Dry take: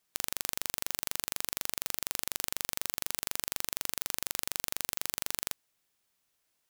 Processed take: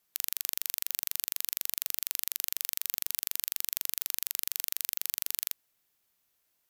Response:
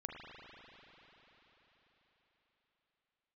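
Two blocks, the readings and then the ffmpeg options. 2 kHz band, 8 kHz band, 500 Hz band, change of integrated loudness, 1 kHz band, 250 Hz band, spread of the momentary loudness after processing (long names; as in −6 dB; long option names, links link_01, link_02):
−4.0 dB, +0.5 dB, below −10 dB, +2.0 dB, −10.5 dB, below −15 dB, 0 LU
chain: -filter_complex "[0:a]equalizer=frequency=13000:width=4.6:gain=11,acrossover=split=1700[link_01][link_02];[link_01]aeval=exprs='clip(val(0),-1,0.00531)':channel_layout=same[link_03];[link_03][link_02]amix=inputs=2:normalize=0"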